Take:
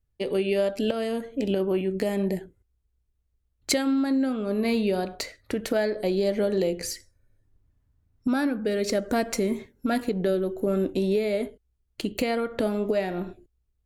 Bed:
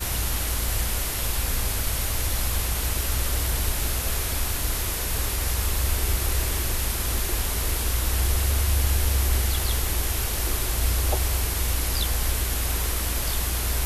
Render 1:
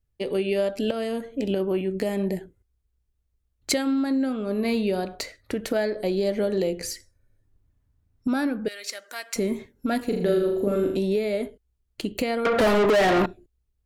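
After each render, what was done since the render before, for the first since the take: 8.68–9.36 s: high-pass 1.5 kHz; 10.05–10.97 s: flutter echo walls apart 6.8 m, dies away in 0.66 s; 12.45–13.26 s: overdrive pedal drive 34 dB, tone 3.6 kHz, clips at -12.5 dBFS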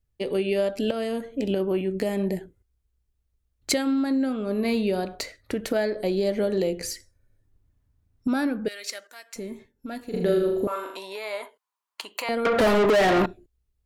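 9.07–10.14 s: feedback comb 890 Hz, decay 0.16 s, mix 70%; 10.67–12.29 s: resonant high-pass 1 kHz, resonance Q 7.7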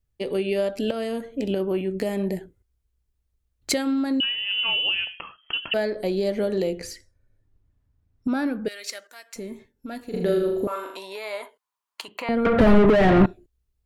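4.20–5.74 s: frequency inversion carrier 3.2 kHz; 6.79–8.46 s: treble shelf 5.3 kHz -9 dB; 12.08–13.26 s: tone controls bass +14 dB, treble -13 dB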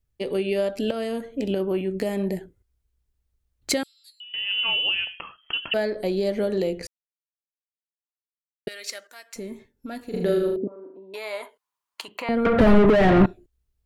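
3.83–4.34 s: inverse Chebyshev high-pass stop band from 810 Hz, stop band 80 dB; 6.87–8.67 s: mute; 10.56–11.14 s: Butterworth band-pass 240 Hz, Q 0.99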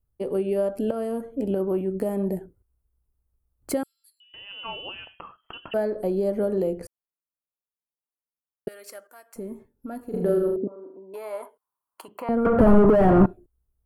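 high-order bell 3.6 kHz -14.5 dB 2.3 oct; band-stop 3.8 kHz, Q 6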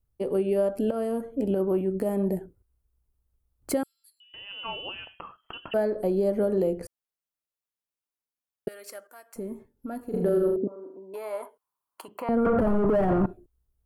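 peak limiter -15.5 dBFS, peak gain reduction 11.5 dB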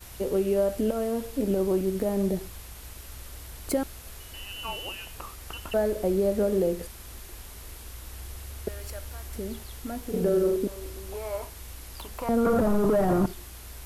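add bed -17.5 dB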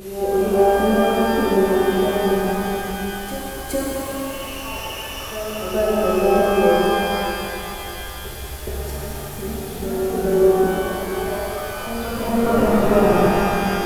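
reverse echo 420 ms -9 dB; pitch-shifted reverb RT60 3.4 s, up +12 st, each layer -8 dB, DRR -6.5 dB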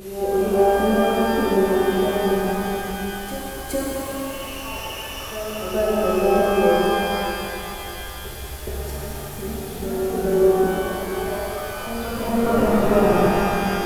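trim -1.5 dB

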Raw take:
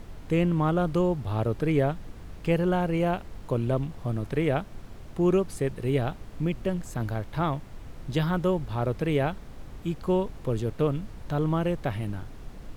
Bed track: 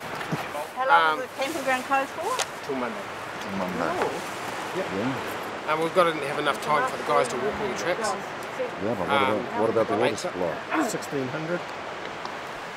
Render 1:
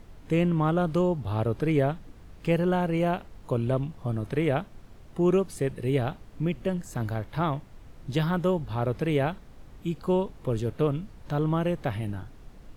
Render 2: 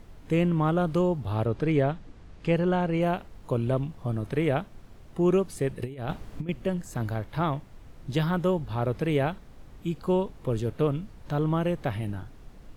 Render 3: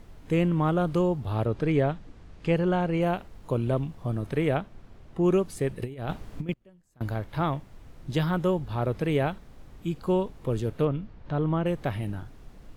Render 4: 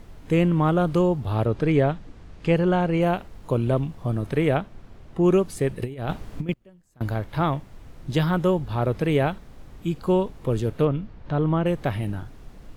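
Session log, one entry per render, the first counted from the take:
noise print and reduce 6 dB
1.45–3.02 s: low-pass 7 kHz; 5.82–6.49 s: compressor with a negative ratio -31 dBFS, ratio -0.5
4.57–5.24 s: treble shelf 6.5 kHz -10.5 dB; 6.53–7.01 s: inverted gate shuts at -36 dBFS, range -27 dB; 10.85–11.66 s: distance through air 190 m
trim +4 dB

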